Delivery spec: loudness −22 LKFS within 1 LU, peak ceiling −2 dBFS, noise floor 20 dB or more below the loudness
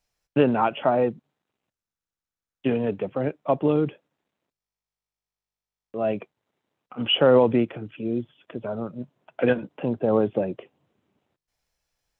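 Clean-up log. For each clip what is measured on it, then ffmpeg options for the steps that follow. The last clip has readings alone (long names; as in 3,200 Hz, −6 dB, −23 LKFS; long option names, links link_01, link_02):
integrated loudness −24.0 LKFS; sample peak −6.5 dBFS; target loudness −22.0 LKFS
→ -af "volume=2dB"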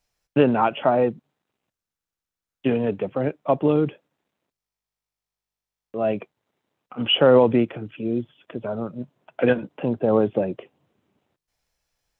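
integrated loudness −22.0 LKFS; sample peak −4.5 dBFS; background noise floor −89 dBFS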